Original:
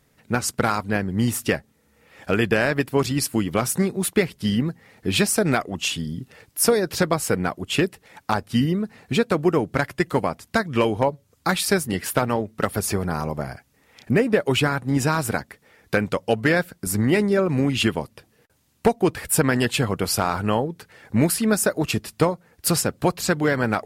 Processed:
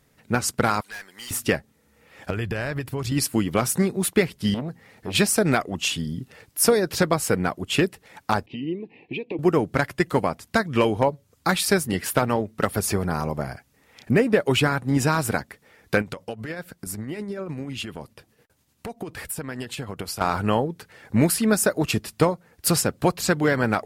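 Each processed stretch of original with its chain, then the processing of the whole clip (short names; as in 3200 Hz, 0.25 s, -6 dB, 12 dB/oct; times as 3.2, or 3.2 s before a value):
0.81–1.31 HPF 1200 Hz + high shelf 2600 Hz +7.5 dB + tube stage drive 33 dB, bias 0.25
2.3–3.12 resonant low shelf 150 Hz +7 dB, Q 1.5 + compressor, threshold -24 dBFS
4.54–5.15 compressor 1.5:1, threshold -29 dBFS + core saturation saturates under 600 Hz
8.46–9.39 compressor, threshold -25 dBFS + Butterworth band-stop 1400 Hz, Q 1.1 + speaker cabinet 190–2800 Hz, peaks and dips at 210 Hz -7 dB, 330 Hz +9 dB, 640 Hz -9 dB, 1400 Hz -7 dB, 2600 Hz +9 dB
16.01–20.21 compressor 12:1, threshold -26 dBFS + tremolo 10 Hz, depth 43%
whole clip: dry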